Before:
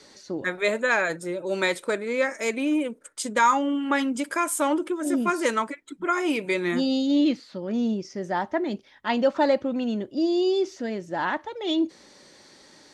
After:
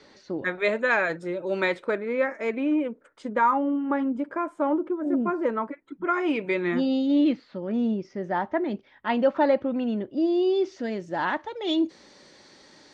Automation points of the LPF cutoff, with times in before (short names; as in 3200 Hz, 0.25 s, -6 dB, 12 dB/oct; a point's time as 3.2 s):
1.42 s 3400 Hz
2.19 s 1900 Hz
3.06 s 1900 Hz
3.71 s 1000 Hz
5.55 s 1000 Hz
6.28 s 2600 Hz
10.47 s 2600 Hz
10.89 s 6000 Hz